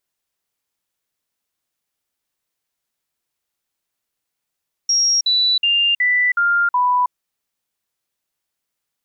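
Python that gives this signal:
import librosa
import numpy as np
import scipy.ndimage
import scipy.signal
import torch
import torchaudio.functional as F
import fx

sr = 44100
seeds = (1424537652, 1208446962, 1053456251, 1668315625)

y = fx.stepped_sweep(sr, from_hz=5600.0, direction='down', per_octave=2, tones=6, dwell_s=0.32, gap_s=0.05, level_db=-13.0)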